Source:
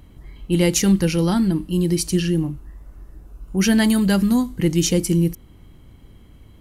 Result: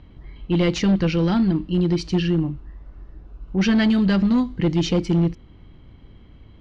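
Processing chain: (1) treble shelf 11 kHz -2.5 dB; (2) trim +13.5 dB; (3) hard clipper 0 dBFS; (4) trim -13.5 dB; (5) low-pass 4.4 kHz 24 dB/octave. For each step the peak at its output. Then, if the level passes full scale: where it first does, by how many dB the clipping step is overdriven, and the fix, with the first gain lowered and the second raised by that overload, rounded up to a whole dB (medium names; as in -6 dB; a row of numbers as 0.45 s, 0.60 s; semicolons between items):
-5.5 dBFS, +8.0 dBFS, 0.0 dBFS, -13.5 dBFS, -13.0 dBFS; step 2, 8.0 dB; step 2 +5.5 dB, step 4 -5.5 dB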